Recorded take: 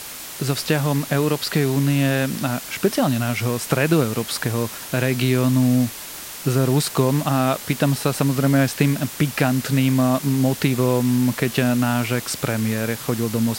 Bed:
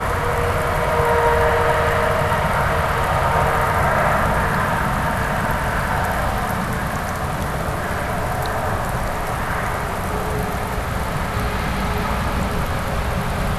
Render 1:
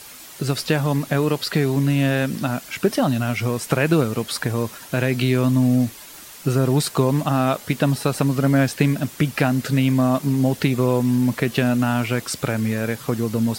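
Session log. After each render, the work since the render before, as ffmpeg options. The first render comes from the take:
-af "afftdn=nr=8:nf=-35"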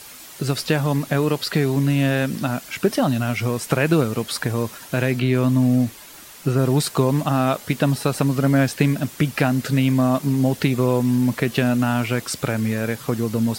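-filter_complex "[0:a]asettb=1/sr,asplit=3[a][b][c];[a]atrim=end=5.124[d];[b]atrim=start=5.12:end=6.59,asetpts=PTS-STARTPTS,afade=t=in:d=0.004:c=qsin,afade=t=out:st=1.466:d=0.004:c=qsin,acrossover=split=3100[e][f];[f]acompressor=threshold=-38dB:ratio=4:attack=1:release=60[g];[e][g]amix=inputs=2:normalize=0[h];[c]atrim=start=6.586[i];[d][h]acrossfade=d=0.004:c1=hsin:c2=qsin[j];[j][i]acrossfade=d=0.004:c1=qsin:c2=hsin"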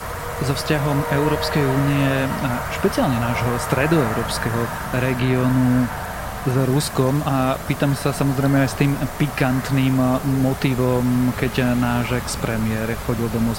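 -filter_complex "[1:a]volume=-8dB[a];[0:a][a]amix=inputs=2:normalize=0"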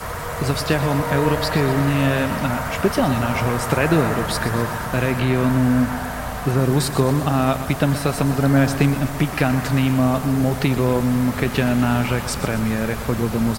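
-af "aecho=1:1:123|246|369|492|615|738:0.224|0.13|0.0753|0.0437|0.0253|0.0147"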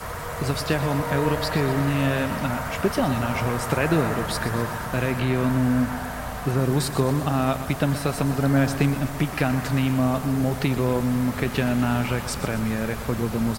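-af "volume=-4dB"

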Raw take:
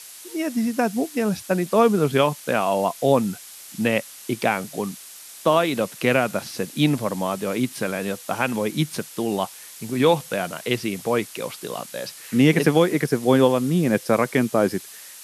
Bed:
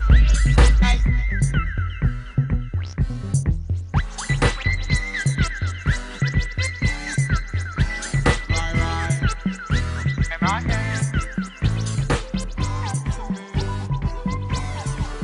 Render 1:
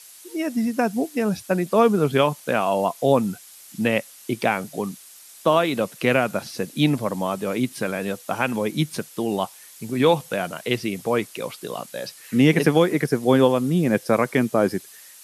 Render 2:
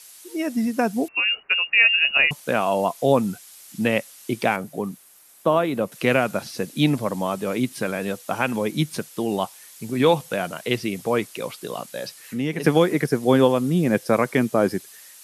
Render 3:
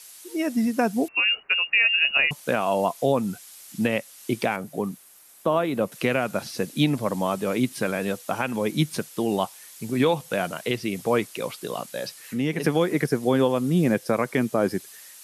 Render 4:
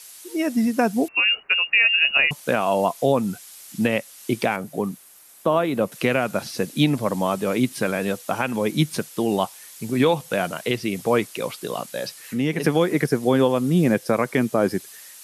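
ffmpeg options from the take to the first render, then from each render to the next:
-af "afftdn=nr=6:nf=-42"
-filter_complex "[0:a]asettb=1/sr,asplit=3[a][b][c];[a]atrim=end=1.084[d];[b]atrim=start=1.08:end=2.31,asetpts=PTS-STARTPTS,afade=t=in:d=0.004:c=qsin,afade=t=out:st=1.226:d=0.004:c=qsin,lowpass=f=2.6k:t=q:w=0.5098,lowpass=f=2.6k:t=q:w=0.6013,lowpass=f=2.6k:t=q:w=0.9,lowpass=f=2.6k:t=q:w=2.563,afreqshift=-3000[e];[c]atrim=start=2.306[f];[d][e]acrossfade=d=0.004:c1=hsin:c2=qsin[g];[g][f]acrossfade=d=0.004:c1=qsin:c2=hsin,asettb=1/sr,asplit=3[h][i][j];[h]atrim=end=4.564[k];[i]atrim=start=4.56:end=5.92,asetpts=PTS-STARTPTS,afade=t=in:d=0.004:c=qsin,afade=t=out:st=1.356:d=0.004:c=qsin,equalizer=f=5.1k:t=o:w=2.6:g=-9.5[l];[j]atrim=start=5.916[m];[k][l]acrossfade=d=0.004:c1=hsin:c2=qsin[n];[n][m]acrossfade=d=0.004:c1=qsin:c2=hsin,asplit=3[o][p][q];[o]afade=t=out:st=12.21:d=0.02[r];[p]acompressor=threshold=-38dB:ratio=1.5:attack=3.2:release=140:knee=1:detection=peak,afade=t=in:st=12.21:d=0.02,afade=t=out:st=12.63:d=0.02[s];[q]afade=t=in:st=12.63:d=0.02[t];[r][s][t]amix=inputs=3:normalize=0"
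-af "alimiter=limit=-10.5dB:level=0:latency=1:release=263"
-af "volume=2.5dB"

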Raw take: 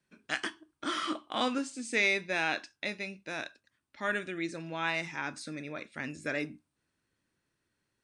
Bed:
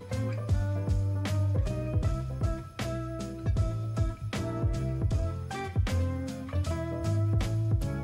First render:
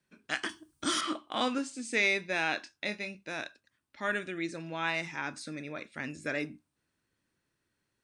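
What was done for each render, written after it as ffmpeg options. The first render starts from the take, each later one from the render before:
-filter_complex "[0:a]asettb=1/sr,asplit=3[a][b][c];[a]atrim=end=0.494[d];[b]atrim=start=0.49:end=1.01,asetpts=PTS-STARTPTS,afade=t=in:d=0.004:c=qsin,afade=t=out:st=0.516:d=0.004:c=qsin,bass=f=250:g=10,treble=f=4k:g=14[e];[c]atrim=start=1.006[f];[d][e]acrossfade=d=0.004:c1=hsin:c2=qsin[g];[g][f]acrossfade=d=0.004:c1=qsin:c2=hsin,asettb=1/sr,asplit=3[h][i][j];[h]atrim=end=2.634[k];[i]atrim=start=2.63:end=3.15,asetpts=PTS-STARTPTS,afade=t=in:d=0.004:c=qsin,afade=t=out:st=0.516:d=0.004:c=qsin,asplit=2[l][m];[m]adelay=24,volume=-9.5dB[n];[l][n]amix=inputs=2:normalize=0,atrim=end_sample=22932[o];[j]atrim=start=3.146[p];[k][o]acrossfade=d=0.004:c1=hsin:c2=qsin[q];[q][p]acrossfade=d=0.004:c1=qsin:c2=hsin"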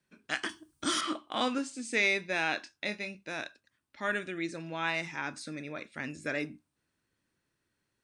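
-af anull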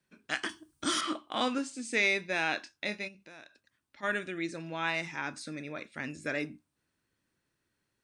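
-filter_complex "[0:a]asplit=3[a][b][c];[a]afade=t=out:st=3.07:d=0.02[d];[b]acompressor=threshold=-53dB:ratio=2.5:attack=3.2:release=140:knee=1:detection=peak,afade=t=in:st=3.07:d=0.02,afade=t=out:st=4.02:d=0.02[e];[c]afade=t=in:st=4.02:d=0.02[f];[d][e][f]amix=inputs=3:normalize=0"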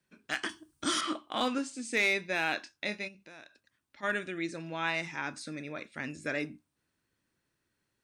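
-af "volume=19.5dB,asoftclip=hard,volume=-19.5dB"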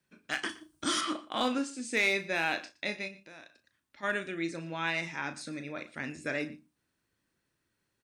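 -filter_complex "[0:a]asplit=2[a][b];[b]adelay=36,volume=-11dB[c];[a][c]amix=inputs=2:normalize=0,aecho=1:1:118:0.1"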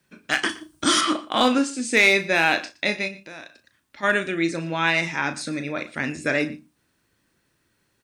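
-af "volume=11dB"

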